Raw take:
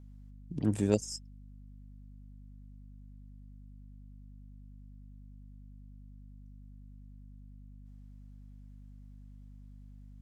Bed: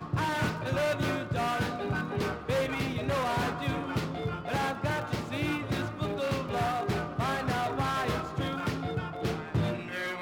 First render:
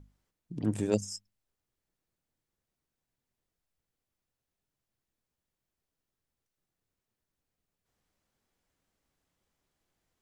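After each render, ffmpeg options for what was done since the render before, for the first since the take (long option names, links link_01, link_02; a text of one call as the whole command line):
ffmpeg -i in.wav -af "bandreject=frequency=50:width_type=h:width=6,bandreject=frequency=100:width_type=h:width=6,bandreject=frequency=150:width_type=h:width=6,bandreject=frequency=200:width_type=h:width=6,bandreject=frequency=250:width_type=h:width=6" out.wav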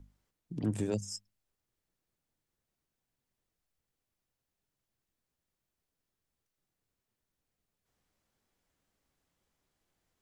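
ffmpeg -i in.wav -filter_complex "[0:a]acrossover=split=150[link_01][link_02];[link_02]acompressor=threshold=-30dB:ratio=6[link_03];[link_01][link_03]amix=inputs=2:normalize=0" out.wav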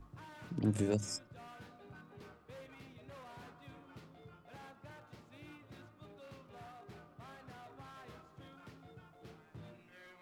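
ffmpeg -i in.wav -i bed.wav -filter_complex "[1:a]volume=-23.5dB[link_01];[0:a][link_01]amix=inputs=2:normalize=0" out.wav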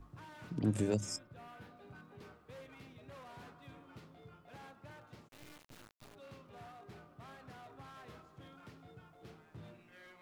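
ffmpeg -i in.wav -filter_complex "[0:a]asettb=1/sr,asplit=3[link_01][link_02][link_03];[link_01]atrim=end=1.164[link_04];[link_02]atrim=start=1.16:end=1.77,asetpts=PTS-STARTPTS,afade=type=in:duration=0.004:curve=qsin,afade=type=out:start_time=0.606:duration=0.004:curve=qsin,equalizer=frequency=6500:width=0.77:gain=-6[link_05];[link_03]atrim=start=1.766[link_06];[link_04][link_05]acrossfade=duration=0.004:curve1=hsin:curve2=qsin[link_07];[link_07][link_06]acrossfade=duration=0.004:curve1=qsin:curve2=hsin,asplit=3[link_08][link_09][link_10];[link_08]afade=type=out:start_time=5.27:duration=0.02[link_11];[link_09]acrusher=bits=6:dc=4:mix=0:aa=0.000001,afade=type=in:start_time=5.27:duration=0.02,afade=type=out:start_time=6.14:duration=0.02[link_12];[link_10]afade=type=in:start_time=6.14:duration=0.02[link_13];[link_11][link_12][link_13]amix=inputs=3:normalize=0" out.wav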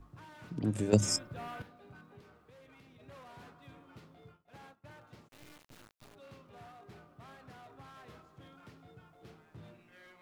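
ffmpeg -i in.wav -filter_complex "[0:a]asettb=1/sr,asplit=3[link_01][link_02][link_03];[link_01]atrim=end=2.204[link_04];[link_02]atrim=start=2.2:end=3,asetpts=PTS-STARTPTS,afade=type=in:duration=0.004:curve=qsin,afade=type=out:start_time=0.796:duration=0.004:curve=qsin,acompressor=threshold=-55dB:ratio=5:attack=3.2:release=140:knee=1:detection=peak[link_05];[link_03]atrim=start=2.996[link_06];[link_04][link_05]acrossfade=duration=0.004:curve1=hsin:curve2=qsin[link_07];[link_07][link_06]acrossfade=duration=0.004:curve1=qsin:curve2=hsin,asplit=3[link_08][link_09][link_10];[link_08]afade=type=out:start_time=4.31:duration=0.02[link_11];[link_09]agate=range=-33dB:threshold=-53dB:ratio=3:release=100:detection=peak,afade=type=in:start_time=4.31:duration=0.02,afade=type=out:start_time=4.84:duration=0.02[link_12];[link_10]afade=type=in:start_time=4.84:duration=0.02[link_13];[link_11][link_12][link_13]amix=inputs=3:normalize=0,asplit=3[link_14][link_15][link_16];[link_14]atrim=end=0.932[link_17];[link_15]atrim=start=0.928:end=1.622,asetpts=PTS-STARTPTS,volume=10dB[link_18];[link_16]atrim=start=1.618[link_19];[link_17][link_18]acrossfade=duration=0.004:curve1=hsin:curve2=hsin[link_20];[link_20][link_19]acrossfade=duration=0.004:curve1=hsin:curve2=hsin" out.wav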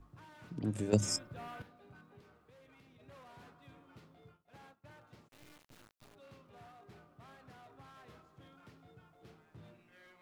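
ffmpeg -i in.wav -af "volume=-3.5dB" out.wav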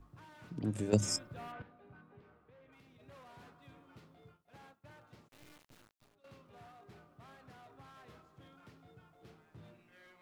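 ffmpeg -i in.wav -filter_complex "[0:a]asplit=3[link_01][link_02][link_03];[link_01]afade=type=out:start_time=1.51:duration=0.02[link_04];[link_02]lowpass=2500,afade=type=in:start_time=1.51:duration=0.02,afade=type=out:start_time=2.71:duration=0.02[link_05];[link_03]afade=type=in:start_time=2.71:duration=0.02[link_06];[link_04][link_05][link_06]amix=inputs=3:normalize=0,asplit=2[link_07][link_08];[link_07]atrim=end=6.24,asetpts=PTS-STARTPTS,afade=type=out:start_time=5.61:duration=0.63:silence=0.16788[link_09];[link_08]atrim=start=6.24,asetpts=PTS-STARTPTS,afade=type=in:duration=0.004:curve=hsin:silence=0.16788[link_10];[link_09][link_10]concat=n=2:v=0:a=1" out.wav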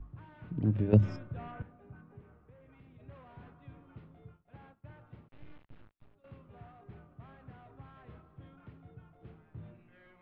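ffmpeg -i in.wav -af "lowpass=frequency=3300:width=0.5412,lowpass=frequency=3300:width=1.3066,aemphasis=mode=reproduction:type=bsi" out.wav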